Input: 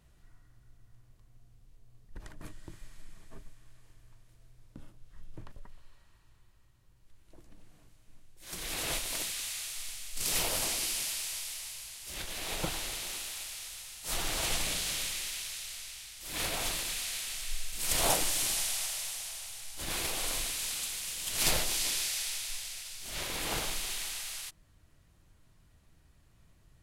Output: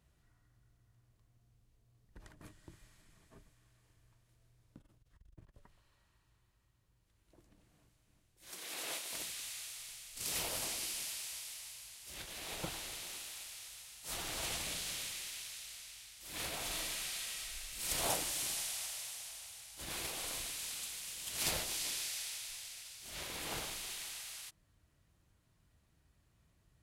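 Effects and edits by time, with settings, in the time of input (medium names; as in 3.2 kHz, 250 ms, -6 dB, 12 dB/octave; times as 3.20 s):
4.77–5.56 s: transformer saturation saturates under 58 Hz
8.51–9.13 s: high-pass 310 Hz
16.66–17.88 s: reverb throw, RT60 0.92 s, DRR -0.5 dB
whole clip: high-pass 41 Hz; trim -7 dB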